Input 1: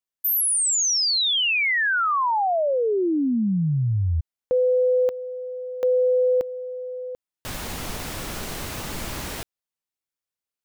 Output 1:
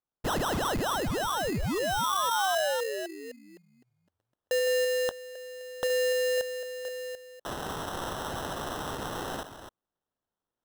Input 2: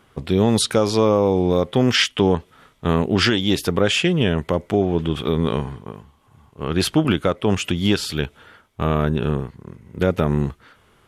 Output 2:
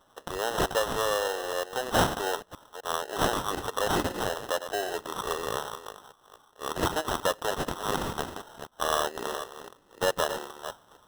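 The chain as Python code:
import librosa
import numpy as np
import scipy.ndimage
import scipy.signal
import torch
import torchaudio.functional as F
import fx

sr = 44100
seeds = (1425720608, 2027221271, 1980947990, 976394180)

y = fx.reverse_delay(x, sr, ms=255, wet_db=-10.0)
y = scipy.signal.sosfilt(scipy.signal.butter(4, 550.0, 'highpass', fs=sr, output='sos'), y)
y = fx.rider(y, sr, range_db=4, speed_s=2.0)
y = fx.sample_hold(y, sr, seeds[0], rate_hz=2300.0, jitter_pct=0)
y = y * librosa.db_to_amplitude(-5.0)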